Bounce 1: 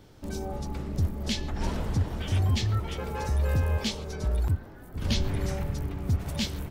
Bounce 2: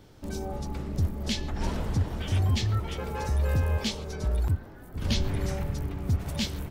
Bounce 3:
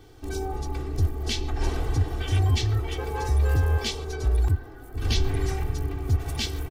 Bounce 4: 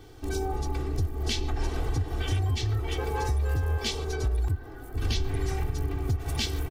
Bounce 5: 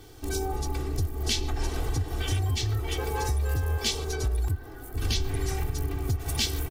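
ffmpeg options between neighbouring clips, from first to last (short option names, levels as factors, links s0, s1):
-af anull
-af "aecho=1:1:2.6:0.96"
-af "acompressor=threshold=0.0562:ratio=6,volume=1.19"
-af "aemphasis=mode=production:type=cd"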